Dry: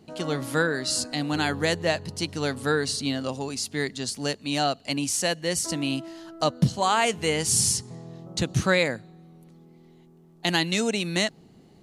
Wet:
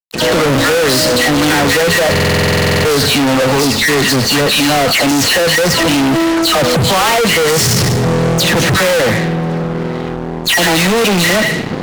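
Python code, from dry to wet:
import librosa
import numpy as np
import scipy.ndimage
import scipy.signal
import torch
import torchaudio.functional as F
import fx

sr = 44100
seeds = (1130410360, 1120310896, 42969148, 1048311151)

p1 = scipy.signal.medfilt(x, 3)
p2 = fx.air_absorb(p1, sr, metres=100.0)
p3 = fx.small_body(p2, sr, hz=(500.0, 1900.0), ring_ms=45, db=10)
p4 = fx.dispersion(p3, sr, late='lows', ms=142.0, hz=2100.0)
p5 = p4 + fx.echo_wet_highpass(p4, sr, ms=76, feedback_pct=41, hz=1500.0, wet_db=-10, dry=0)
p6 = 10.0 ** (-23.0 / 20.0) * np.tanh(p5 / 10.0 ** (-23.0 / 20.0))
p7 = scipy.signal.sosfilt(scipy.signal.butter(4, 86.0, 'highpass', fs=sr, output='sos'), p6)
p8 = fx.high_shelf(p7, sr, hz=4300.0, db=-5.0)
p9 = fx.fuzz(p8, sr, gain_db=50.0, gate_db=-55.0)
p10 = fx.buffer_glitch(p9, sr, at_s=(2.11,), block=2048, repeats=15)
y = F.gain(torch.from_numpy(p10), 2.5).numpy()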